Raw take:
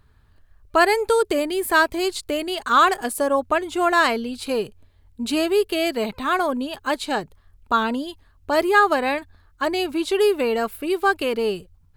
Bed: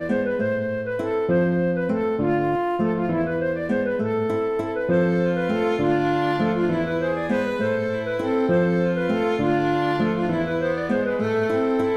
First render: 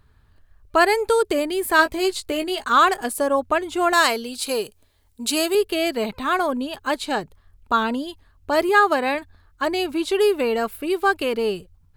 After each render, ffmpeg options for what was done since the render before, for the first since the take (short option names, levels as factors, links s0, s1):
-filter_complex "[0:a]asettb=1/sr,asplit=3[s0][s1][s2];[s0]atrim=end=1.774[s3];[s1]atrim=start=1.77:end=2.65,asetpts=PTS-STARTPTS,afade=t=in:d=0.004:c=qsin,afade=t=out:st=0.876:d=0.004:c=qsin,asplit=2[s4][s5];[s5]adelay=16,volume=0.398[s6];[s4][s6]amix=inputs=2:normalize=0,atrim=end_sample=38808[s7];[s2]atrim=start=2.646[s8];[s3][s7]acrossfade=d=0.004:c1=hsin:c2=qsin[s9];[s9][s8]acrossfade=d=0.004:c1=qsin:c2=hsin,asettb=1/sr,asplit=3[s10][s11][s12];[s10]atrim=end=3.934[s13];[s11]atrim=start=3.93:end=5.55,asetpts=PTS-STARTPTS,afade=t=in:d=0.004:c=qsin,afade=t=out:st=1.616:d=0.004:c=qsin,bass=f=250:g=-9,treble=f=4000:g=10[s14];[s12]atrim=start=5.546[s15];[s13][s14]acrossfade=d=0.004:c1=hsin:c2=qsin[s16];[s16][s15]acrossfade=d=0.004:c1=qsin:c2=hsin,asettb=1/sr,asplit=3[s17][s18][s19];[s17]atrim=end=8.694[s20];[s18]atrim=start=8.69:end=9.15,asetpts=PTS-STARTPTS,afade=t=in:d=0.004:c=qsin,afade=t=out:st=0.456:d=0.004:c=qsin,highpass=94[s21];[s19]atrim=start=9.146[s22];[s20][s21]acrossfade=d=0.004:c1=hsin:c2=qsin[s23];[s23][s22]acrossfade=d=0.004:c1=qsin:c2=hsin"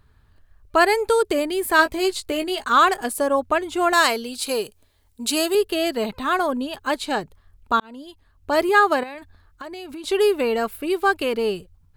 -filter_complex "[0:a]asettb=1/sr,asplit=3[s0][s1][s2];[s0]atrim=end=5.334[s3];[s1]atrim=start=5.33:end=6.65,asetpts=PTS-STARTPTS,afade=t=in:d=0.004:c=qsin,afade=t=out:st=1.316:d=0.004:c=qsin,bandreject=f=2300:w=12[s4];[s2]atrim=start=6.646[s5];[s3][s4]acrossfade=d=0.004:c1=hsin:c2=qsin[s6];[s6][s5]acrossfade=d=0.004:c1=qsin:c2=hsin,asettb=1/sr,asplit=3[s7][s8][s9];[s7]atrim=end=9.034[s10];[s8]atrim=start=9.03:end=10.04,asetpts=PTS-STARTPTS,afade=t=in:d=0.004:c=qsin,afade=t=out:st=1.006:d=0.004:c=qsin,acompressor=threshold=0.0282:ratio=16:attack=3.2:release=140:knee=1:detection=peak[s11];[s9]atrim=start=10.036[s12];[s10][s11]acrossfade=d=0.004:c1=hsin:c2=qsin[s13];[s13][s12]acrossfade=d=0.004:c1=qsin:c2=hsin,asplit=2[s14][s15];[s14]atrim=end=7.8,asetpts=PTS-STARTPTS,afade=t=out:st=7.796:d=0.004:c=hsin[s16];[s15]atrim=start=7.8,asetpts=PTS-STARTPTS,afade=t=in:d=0.71[s17];[s16][s17]concat=n=2:v=0:a=1"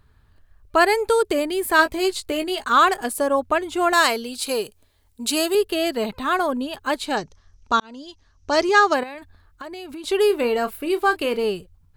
-filter_complex "[0:a]asettb=1/sr,asplit=3[s0][s1][s2];[s0]atrim=end=7.174[s3];[s1]atrim=start=7.17:end=8.94,asetpts=PTS-STARTPTS,afade=t=in:d=0.004:c=qsin,afade=t=out:st=1.766:d=0.004:c=qsin,lowpass=f=5900:t=q:w=10[s4];[s2]atrim=start=8.936[s5];[s3][s4]acrossfade=d=0.004:c1=hsin:c2=qsin[s6];[s6][s5]acrossfade=d=0.004:c1=qsin:c2=hsin,asettb=1/sr,asplit=3[s7][s8][s9];[s7]atrim=end=10.274[s10];[s8]atrim=start=10.27:end=11.44,asetpts=PTS-STARTPTS,afade=t=in:d=0.004:c=qsin,afade=t=out:st=1.166:d=0.004:c=qsin,asplit=2[s11][s12];[s12]adelay=29,volume=0.266[s13];[s11][s13]amix=inputs=2:normalize=0,atrim=end_sample=51597[s14];[s9]atrim=start=11.436[s15];[s10][s14]acrossfade=d=0.004:c1=hsin:c2=qsin[s16];[s16][s15]acrossfade=d=0.004:c1=qsin:c2=hsin"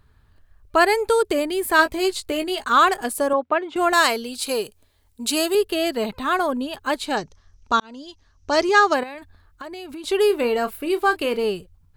-filter_complex "[0:a]asettb=1/sr,asplit=3[s0][s1][s2];[s0]atrim=end=3.334[s3];[s1]atrim=start=3.33:end=3.76,asetpts=PTS-STARTPTS,afade=t=in:d=0.004:c=qsin,afade=t=out:st=0.426:d=0.004:c=qsin,highpass=250,lowpass=2800[s4];[s2]atrim=start=3.756[s5];[s3][s4]acrossfade=d=0.004:c1=hsin:c2=qsin[s6];[s6][s5]acrossfade=d=0.004:c1=qsin:c2=hsin"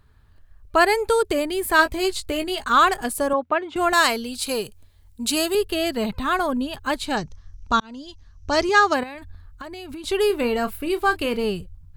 -af "asubboost=boost=3.5:cutoff=190"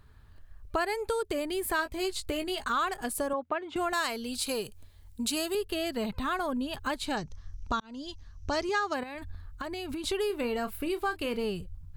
-af "acompressor=threshold=0.0282:ratio=3"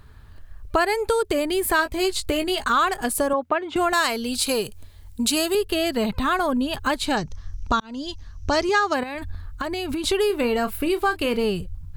-af "volume=2.82"